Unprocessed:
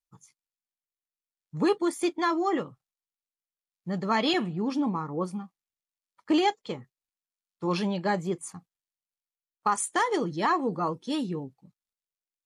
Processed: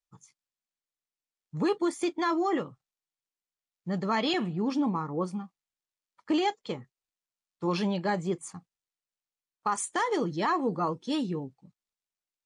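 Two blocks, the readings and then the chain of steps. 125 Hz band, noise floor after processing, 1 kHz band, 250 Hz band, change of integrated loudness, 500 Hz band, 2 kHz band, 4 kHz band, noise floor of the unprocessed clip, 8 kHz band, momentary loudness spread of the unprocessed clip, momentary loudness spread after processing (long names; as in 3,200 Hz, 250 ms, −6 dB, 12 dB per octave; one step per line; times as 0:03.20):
0.0 dB, below −85 dBFS, −2.5 dB, −1.0 dB, −2.0 dB, −1.5 dB, −2.5 dB, −2.5 dB, below −85 dBFS, −2.5 dB, 15 LU, 12 LU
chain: low-pass filter 8,900 Hz 24 dB per octave
brickwall limiter −19 dBFS, peak gain reduction 3.5 dB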